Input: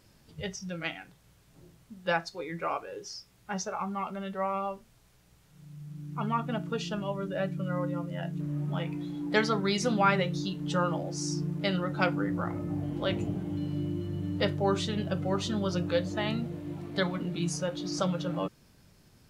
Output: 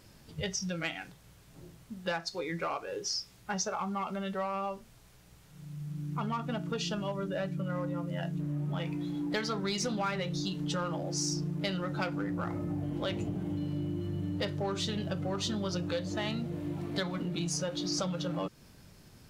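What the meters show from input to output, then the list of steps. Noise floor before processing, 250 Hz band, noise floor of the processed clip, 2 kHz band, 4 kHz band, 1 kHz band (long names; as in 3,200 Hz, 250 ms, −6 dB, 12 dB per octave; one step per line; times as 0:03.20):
−62 dBFS, −2.5 dB, −58 dBFS, −4.5 dB, +0.5 dB, −4.5 dB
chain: in parallel at −4.5 dB: hard clipping −29 dBFS, distortion −8 dB
on the sum: downward compressor 4 to 1, threshold −32 dBFS, peak gain reduction 12 dB
dynamic equaliser 5,100 Hz, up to +5 dB, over −53 dBFS, Q 0.92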